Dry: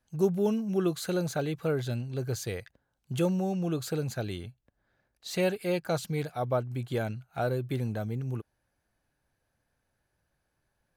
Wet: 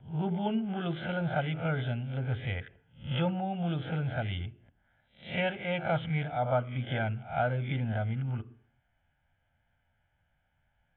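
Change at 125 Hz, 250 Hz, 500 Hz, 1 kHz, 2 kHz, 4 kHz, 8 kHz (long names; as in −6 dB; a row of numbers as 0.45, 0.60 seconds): +1.0 dB, −2.5 dB, −4.5 dB, +4.0 dB, +4.5 dB, +0.5 dB, below −35 dB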